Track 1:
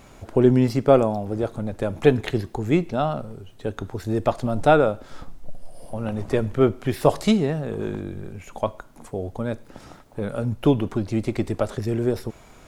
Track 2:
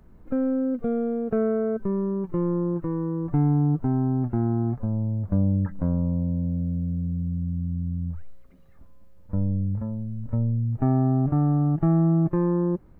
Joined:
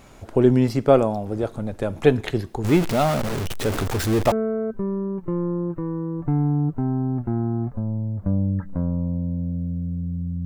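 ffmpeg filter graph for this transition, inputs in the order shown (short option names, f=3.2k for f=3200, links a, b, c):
-filter_complex "[0:a]asettb=1/sr,asplit=3[a][b][c];[a]atrim=end=2.644[d];[b]atrim=start=2.64:end=4.32,asetpts=PTS-STARTPTS,afade=t=in:d=0.004:c=qsin,afade=t=out:st=1.676:d=0.004:c=qsin,aeval=exprs='val(0)+0.5*0.0891*sgn(val(0))':c=same[e];[c]atrim=start=4.316[f];[d][e]acrossfade=d=0.004:c1=hsin:c2=qsin[g];[g][f]acrossfade=d=0.004:c1=qsin:c2=hsin,apad=whole_dur=10.45,atrim=end=10.45,atrim=end=4.322[h];[1:a]atrim=start=1.378:end=7.51[i];[h][i]acrossfade=d=0.004:c1=hsin:c2=hsin"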